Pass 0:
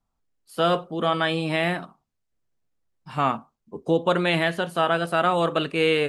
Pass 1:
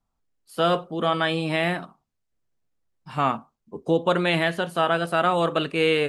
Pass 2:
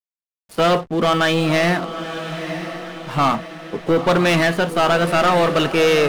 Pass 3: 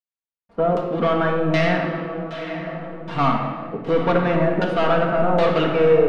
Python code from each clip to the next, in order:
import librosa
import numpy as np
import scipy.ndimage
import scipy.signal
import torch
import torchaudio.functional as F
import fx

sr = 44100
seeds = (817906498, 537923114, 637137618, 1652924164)

y1 = x
y2 = fx.leveller(y1, sr, passes=3)
y2 = fx.backlash(y2, sr, play_db=-35.5)
y2 = fx.echo_diffused(y2, sr, ms=956, feedback_pct=51, wet_db=-10)
y2 = F.gain(torch.from_numpy(y2), -1.5).numpy()
y3 = fx.filter_lfo_lowpass(y2, sr, shape='saw_down', hz=1.3, low_hz=600.0, high_hz=5000.0, q=0.79)
y3 = fx.room_shoebox(y3, sr, seeds[0], volume_m3=2200.0, walls='mixed', distance_m=1.7)
y3 = F.gain(torch.from_numpy(y3), -4.5).numpy()